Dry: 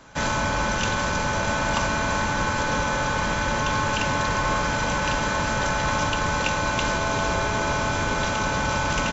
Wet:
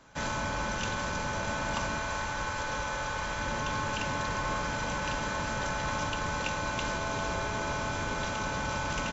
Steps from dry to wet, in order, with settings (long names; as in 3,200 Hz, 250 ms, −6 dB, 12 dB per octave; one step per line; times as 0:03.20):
0:01.99–0:03.39: parametric band 210 Hz −7 dB 1.6 octaves
level −8.5 dB